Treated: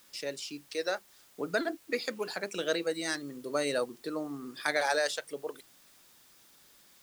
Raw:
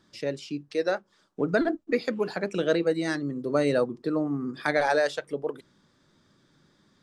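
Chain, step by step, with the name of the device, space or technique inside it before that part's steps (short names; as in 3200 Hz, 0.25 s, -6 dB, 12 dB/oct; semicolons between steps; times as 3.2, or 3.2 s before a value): turntable without a phono preamp (RIAA curve recording; white noise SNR 26 dB); gain -4.5 dB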